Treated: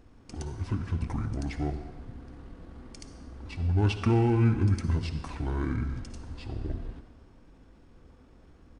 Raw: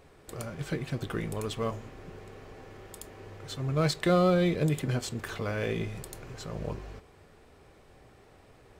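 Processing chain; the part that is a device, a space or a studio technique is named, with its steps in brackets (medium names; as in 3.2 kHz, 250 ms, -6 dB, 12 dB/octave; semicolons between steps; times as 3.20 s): monster voice (pitch shift -7.5 st; bass shelf 200 Hz +8.5 dB; reverberation RT60 1.2 s, pre-delay 49 ms, DRR 9 dB); trim -3.5 dB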